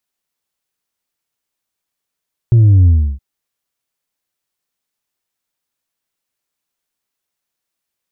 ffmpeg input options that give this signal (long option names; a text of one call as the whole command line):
ffmpeg -f lavfi -i "aevalsrc='0.531*clip((0.67-t)/0.32,0,1)*tanh(1.33*sin(2*PI*120*0.67/log(65/120)*(exp(log(65/120)*t/0.67)-1)))/tanh(1.33)':duration=0.67:sample_rate=44100" out.wav